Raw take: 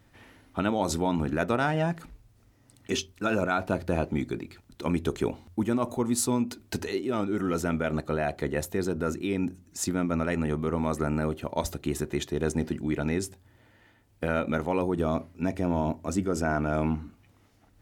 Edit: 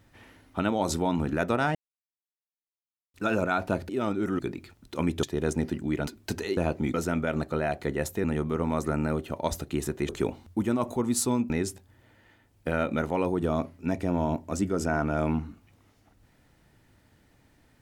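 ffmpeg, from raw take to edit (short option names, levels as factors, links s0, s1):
-filter_complex "[0:a]asplit=12[s0][s1][s2][s3][s4][s5][s6][s7][s8][s9][s10][s11];[s0]atrim=end=1.75,asetpts=PTS-STARTPTS,afade=t=out:st=1.746:d=0.004:c=hsin[s12];[s1]atrim=start=1.75:end=3.14,asetpts=PTS-STARTPTS,volume=0[s13];[s2]atrim=start=3.14:end=3.892,asetpts=PTS-STARTPTS,afade=t=in:d=0.004:c=hsin[s14];[s3]atrim=start=7.008:end=7.512[s15];[s4]atrim=start=4.258:end=5.102[s16];[s5]atrim=start=12.218:end=13.062[s17];[s6]atrim=start=6.508:end=7.012[s18];[s7]atrim=start=3.888:end=4.262[s19];[s8]atrim=start=7.508:end=8.812[s20];[s9]atrim=start=10.368:end=12.222[s21];[s10]atrim=start=5.098:end=6.512[s22];[s11]atrim=start=13.058[s23];[s12][s13][s14]concat=n=3:v=0:a=1[s24];[s24][s15]acrossfade=d=0.004:c1=hsin:c2=hsin[s25];[s25][s16]acrossfade=d=0.004:c1=hsin:c2=hsin[s26];[s26][s17]acrossfade=d=0.004:c1=hsin:c2=hsin[s27];[s27][s18]acrossfade=d=0.004:c1=hsin:c2=hsin[s28];[s28][s19]acrossfade=d=0.004:c1=hsin:c2=hsin[s29];[s29][s20]acrossfade=d=0.004:c1=hsin:c2=hsin[s30];[s30][s21]acrossfade=d=0.004:c1=hsin:c2=hsin[s31];[s31][s22]acrossfade=d=0.004:c1=hsin:c2=hsin[s32];[s32][s23]acrossfade=d=0.004:c1=hsin:c2=hsin"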